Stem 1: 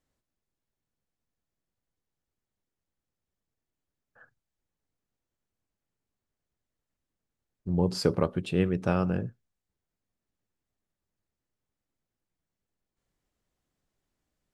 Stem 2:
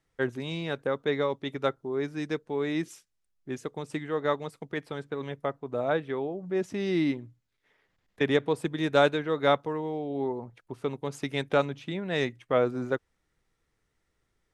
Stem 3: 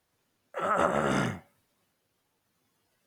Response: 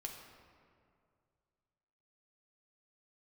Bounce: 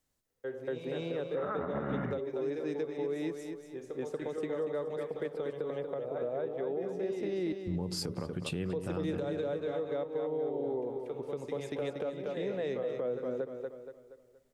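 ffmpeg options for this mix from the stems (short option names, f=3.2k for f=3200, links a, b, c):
-filter_complex "[0:a]volume=-1dB,asplit=3[a][b][c];[b]volume=-16dB[d];[1:a]equalizer=f=510:t=o:w=0.82:g=14,acompressor=threshold=-24dB:ratio=2,adelay=250,volume=1dB,asplit=3[e][f][g];[e]atrim=end=7.29,asetpts=PTS-STARTPTS,afade=t=out:st=7.286:d=0.004:c=hsin[h];[f]atrim=start=7.29:end=8.72,asetpts=PTS-STARTPTS,volume=0[i];[g]atrim=start=8.72,asetpts=PTS-STARTPTS,afade=t=in:d=0.004:c=hsin[j];[h][i][j]concat=n=3:v=0:a=1,asplit=3[k][l][m];[l]volume=-13dB[n];[m]volume=-9dB[o];[2:a]lowpass=f=2k:w=0.5412,lowpass=f=2k:w=1.3066,adelay=800,volume=-2.5dB[p];[c]apad=whole_len=652215[q];[k][q]sidechaingate=range=-33dB:threshold=-52dB:ratio=16:detection=peak[r];[a][r]amix=inputs=2:normalize=0,highshelf=f=4.9k:g=9,acompressor=threshold=-26dB:ratio=6,volume=0dB[s];[3:a]atrim=start_sample=2205[t];[n][t]afir=irnorm=-1:irlink=0[u];[d][o]amix=inputs=2:normalize=0,aecho=0:1:236|472|708|944|1180|1416:1|0.4|0.16|0.064|0.0256|0.0102[v];[p][s][u][v]amix=inputs=4:normalize=0,acrossover=split=320[w][x];[x]acompressor=threshold=-33dB:ratio=6[y];[w][y]amix=inputs=2:normalize=0,alimiter=level_in=1.5dB:limit=-24dB:level=0:latency=1:release=58,volume=-1.5dB"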